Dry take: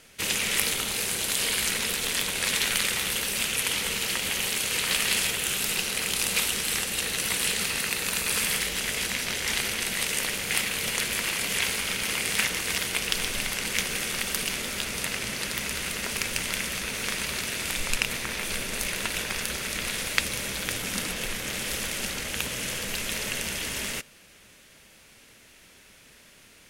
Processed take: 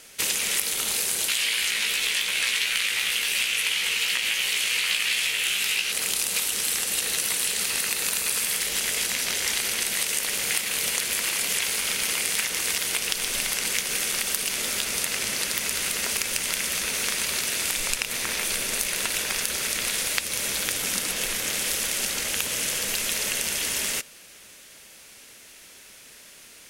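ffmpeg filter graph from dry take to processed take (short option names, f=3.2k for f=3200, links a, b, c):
-filter_complex "[0:a]asettb=1/sr,asplit=3[a][b][c];[a]atrim=end=1.284[d];[b]atrim=start=1.28:end=5.92,asetpts=PTS-STARTPTS,afade=t=in:d=0.004:c=qsin,afade=t=out:st=4.636:d=0.004:c=qsin,flanger=delay=15.5:depth=2.6:speed=2.8,equalizer=f=2.5k:w=0.79:g=13[e];[c]atrim=start=5.916[f];[d][e]acrossfade=d=0.004:c1=hsin:c2=qsin[g];[g][f]acrossfade=d=0.004:c1=qsin:c2=hsin,bass=f=250:g=-7,treble=f=4k:g=6,acompressor=threshold=-25dB:ratio=6,volume=3dB"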